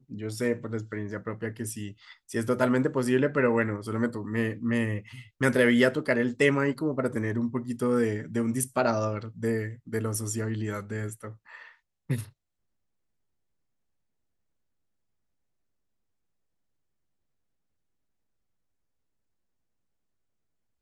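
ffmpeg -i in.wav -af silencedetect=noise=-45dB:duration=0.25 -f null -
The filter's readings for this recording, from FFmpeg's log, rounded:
silence_start: 11.69
silence_end: 12.10 | silence_duration: 0.40
silence_start: 12.29
silence_end: 20.81 | silence_duration: 8.52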